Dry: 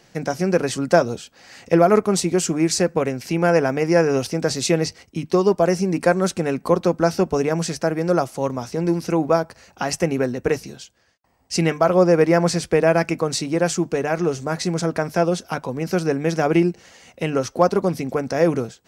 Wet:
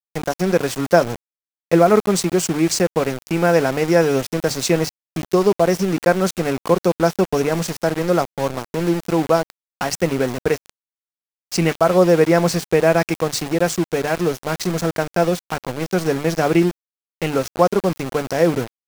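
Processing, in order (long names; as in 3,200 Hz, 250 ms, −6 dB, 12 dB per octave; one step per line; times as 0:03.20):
centre clipping without the shift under −25.5 dBFS
level +1.5 dB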